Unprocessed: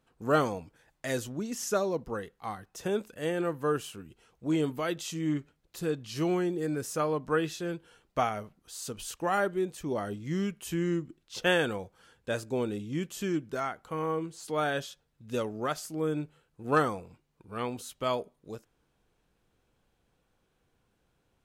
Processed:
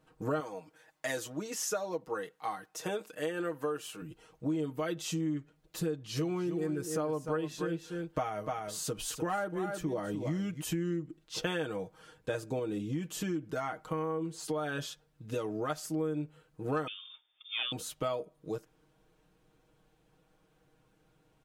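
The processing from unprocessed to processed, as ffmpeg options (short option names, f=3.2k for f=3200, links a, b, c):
-filter_complex "[0:a]asettb=1/sr,asplit=3[a][b][c];[a]atrim=end=0.404[d];[b]atrim=start=0.4:end=4.02,asetpts=PTS-STARTPTS,afade=t=in:d=0.004:c=qsin,afade=t=out:st=3.616:d=0.004:c=qsin,highpass=f=570:p=1[e];[c]atrim=start=4.016[f];[d][e]acrossfade=d=0.004:c1=hsin:c2=qsin[g];[g][f]acrossfade=d=0.004:c1=qsin:c2=hsin,asplit=3[h][i][j];[h]afade=t=out:st=6.18:d=0.02[k];[i]aecho=1:1:298:0.316,afade=t=in:st=6.18:d=0.02,afade=t=out:st=10.6:d=0.02[l];[j]afade=t=in:st=10.6:d=0.02[m];[k][l][m]amix=inputs=3:normalize=0,asettb=1/sr,asplit=3[n][o][p];[n]atrim=end=12.594[q];[o]atrim=start=12.59:end=15.7,asetpts=PTS-STARTPTS,afade=t=in:d=0.004:c=qsin,afade=t=out:st=3.106:d=0.004:c=qsin,acompressor=threshold=-33dB:ratio=2:attack=3.2:release=140:knee=1:detection=peak[r];[p]atrim=start=15.696[s];[q][r]acrossfade=d=0.004:c1=hsin:c2=qsin[t];[t][s]acrossfade=d=0.004:c1=qsin:c2=hsin,asettb=1/sr,asplit=3[u][v][w];[u]atrim=end=16.874[x];[v]atrim=start=16.87:end=17.72,asetpts=PTS-STARTPTS,afade=t=in:d=0.004:c=qsin,afade=t=out:st=0.846:d=0.004:c=qsin,lowpass=f=3.1k:t=q:w=0.5098,lowpass=f=3.1k:t=q:w=0.6013,lowpass=f=3.1k:t=q:w=0.9,lowpass=f=3.1k:t=q:w=2.563,afreqshift=-3700[y];[w]atrim=start=17.716[z];[x][y]acrossfade=d=0.004:c1=hsin:c2=qsin[aa];[aa][z]acrossfade=d=0.004:c1=qsin:c2=hsin,equalizer=f=360:w=0.32:g=4,aecho=1:1:6.4:0.78,acompressor=threshold=-31dB:ratio=6"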